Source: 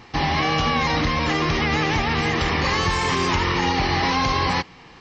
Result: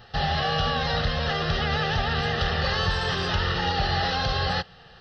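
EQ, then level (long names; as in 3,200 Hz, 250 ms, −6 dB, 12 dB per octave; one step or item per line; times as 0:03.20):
phaser with its sweep stopped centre 1,500 Hz, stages 8
0.0 dB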